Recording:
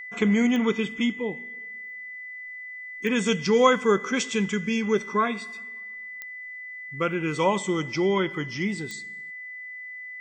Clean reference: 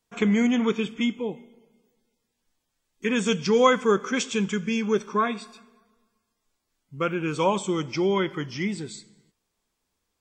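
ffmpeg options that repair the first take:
-af "adeclick=t=4,bandreject=f=2k:w=30"

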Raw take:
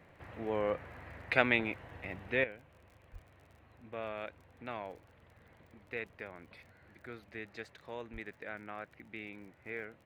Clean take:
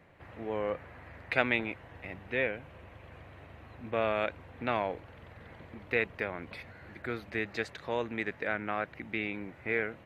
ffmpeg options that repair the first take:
-filter_complex "[0:a]adeclick=t=4,asplit=3[a][b][c];[a]afade=t=out:st=3.12:d=0.02[d];[b]highpass=f=140:w=0.5412,highpass=f=140:w=1.3066,afade=t=in:st=3.12:d=0.02,afade=t=out:st=3.24:d=0.02[e];[c]afade=t=in:st=3.24:d=0.02[f];[d][e][f]amix=inputs=3:normalize=0,asplit=3[g][h][i];[g]afade=t=out:st=8.12:d=0.02[j];[h]highpass=f=140:w=0.5412,highpass=f=140:w=1.3066,afade=t=in:st=8.12:d=0.02,afade=t=out:st=8.24:d=0.02[k];[i]afade=t=in:st=8.24:d=0.02[l];[j][k][l]amix=inputs=3:normalize=0,asetnsamples=n=441:p=0,asendcmd='2.44 volume volume 11dB',volume=0dB"

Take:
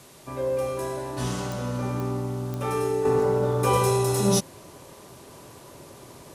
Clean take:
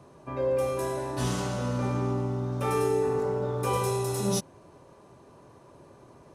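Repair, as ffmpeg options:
-af "adeclick=t=4,afwtdn=0.0028,asetnsamples=n=441:p=0,asendcmd='3.05 volume volume -6dB',volume=0dB"

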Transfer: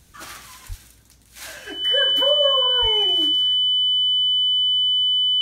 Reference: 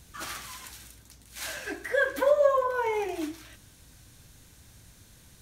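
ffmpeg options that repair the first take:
-filter_complex "[0:a]bandreject=f=3k:w=30,asplit=3[a][b][c];[a]afade=t=out:st=0.68:d=0.02[d];[b]highpass=f=140:w=0.5412,highpass=f=140:w=1.3066,afade=t=in:st=0.68:d=0.02,afade=t=out:st=0.8:d=0.02[e];[c]afade=t=in:st=0.8:d=0.02[f];[d][e][f]amix=inputs=3:normalize=0,asplit=3[g][h][i];[g]afade=t=out:st=2.81:d=0.02[j];[h]highpass=f=140:w=0.5412,highpass=f=140:w=1.3066,afade=t=in:st=2.81:d=0.02,afade=t=out:st=2.93:d=0.02[k];[i]afade=t=in:st=2.93:d=0.02[l];[j][k][l]amix=inputs=3:normalize=0"

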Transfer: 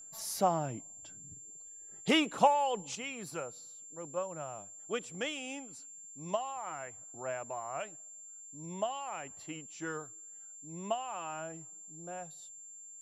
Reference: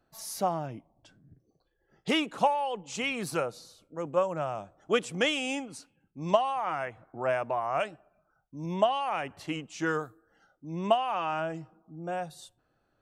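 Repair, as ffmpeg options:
-af "bandreject=f=7.3k:w=30,asetnsamples=n=441:p=0,asendcmd='2.95 volume volume 10dB',volume=0dB"

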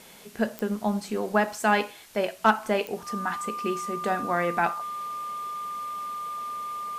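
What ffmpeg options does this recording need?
-af "adeclick=t=4,bandreject=f=1.2k:w=30,afwtdn=0.0028"

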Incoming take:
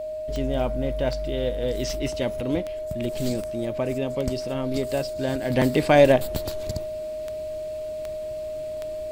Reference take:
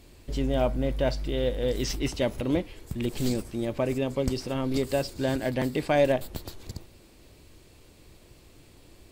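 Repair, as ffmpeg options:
-af "adeclick=t=4,bandreject=f=620:w=30,asetnsamples=n=441:p=0,asendcmd='5.5 volume volume -7dB',volume=0dB"

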